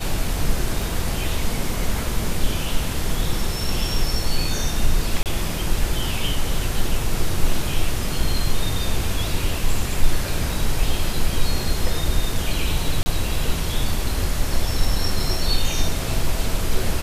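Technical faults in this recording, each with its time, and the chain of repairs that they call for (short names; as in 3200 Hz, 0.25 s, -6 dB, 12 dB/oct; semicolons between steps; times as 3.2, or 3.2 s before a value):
0.82 gap 2.4 ms
5.23–5.26 gap 28 ms
13.03–13.06 gap 30 ms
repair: interpolate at 0.82, 2.4 ms; interpolate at 5.23, 28 ms; interpolate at 13.03, 30 ms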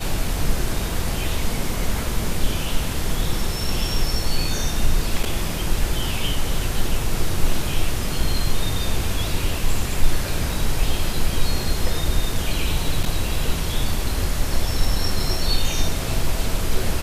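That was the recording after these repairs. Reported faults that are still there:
none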